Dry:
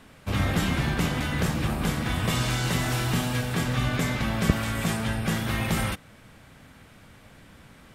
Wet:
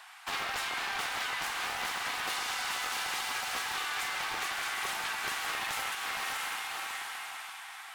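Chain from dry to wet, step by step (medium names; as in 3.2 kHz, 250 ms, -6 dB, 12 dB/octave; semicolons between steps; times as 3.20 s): brick-wall FIR high-pass 680 Hz; echo that smears into a reverb 604 ms, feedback 44%, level -3.5 dB; compression 6:1, threshold -36 dBFS, peak gain reduction 9.5 dB; loudspeaker Doppler distortion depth 0.9 ms; trim +4.5 dB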